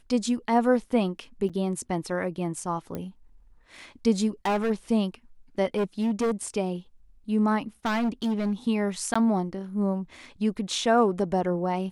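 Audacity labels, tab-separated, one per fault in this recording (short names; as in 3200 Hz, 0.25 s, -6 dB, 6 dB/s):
1.490000	1.500000	gap 6.2 ms
2.950000	2.950000	pop -20 dBFS
4.450000	4.710000	clipped -21.5 dBFS
5.760000	6.320000	clipped -21.5 dBFS
7.850000	8.530000	clipped -22.5 dBFS
9.140000	9.150000	gap 15 ms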